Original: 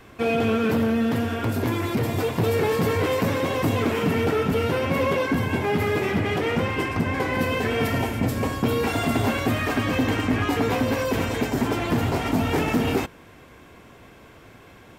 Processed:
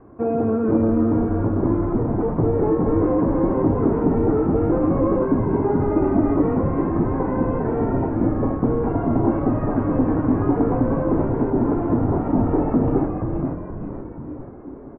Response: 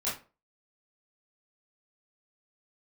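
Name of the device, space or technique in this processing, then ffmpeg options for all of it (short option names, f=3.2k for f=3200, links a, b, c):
under water: -filter_complex "[0:a]asettb=1/sr,asplit=3[a][b][c];[a]atrim=end=5.894[d];[b]atrim=start=5.89:end=6.42,asetpts=PTS-STARTPTS,afade=t=in:d=0.004:c=qsin,afade=t=out:st=0.526:d=0.004:c=qsin,aecho=1:1:3.3:0.86,atrim=end_sample=23373[e];[c]atrim=start=6.416[f];[d][e]acrossfade=d=0.004:c1=hsin:c2=qsin[g];[g][f]acrossfade=d=0.004:c1=qsin:c2=hsin,asplit=8[h][i][j][k][l][m][n][o];[i]adelay=478,afreqshift=-130,volume=-4dB[p];[j]adelay=956,afreqshift=-260,volume=-9.5dB[q];[k]adelay=1434,afreqshift=-390,volume=-15dB[r];[l]adelay=1912,afreqshift=-520,volume=-20.5dB[s];[m]adelay=2390,afreqshift=-650,volume=-26.1dB[t];[n]adelay=2868,afreqshift=-780,volume=-31.6dB[u];[o]adelay=3346,afreqshift=-910,volume=-37.1dB[v];[h][p][q][r][s][t][u][v]amix=inputs=8:normalize=0,lowpass=f=1.1k:w=0.5412,lowpass=f=1.1k:w=1.3066,equalizer=f=310:t=o:w=0.57:g=7"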